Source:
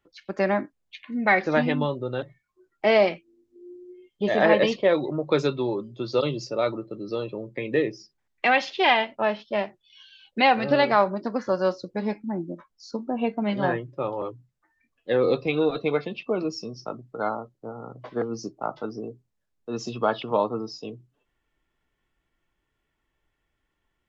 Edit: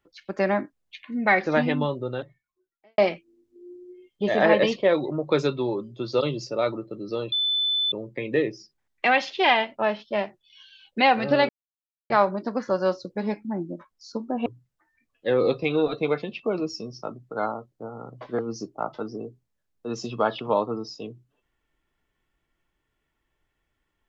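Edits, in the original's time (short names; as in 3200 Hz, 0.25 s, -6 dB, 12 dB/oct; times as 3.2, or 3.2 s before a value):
2.09–2.98 fade out quadratic
7.32 add tone 3510 Hz -21 dBFS 0.60 s
10.89 insert silence 0.61 s
13.25–14.29 cut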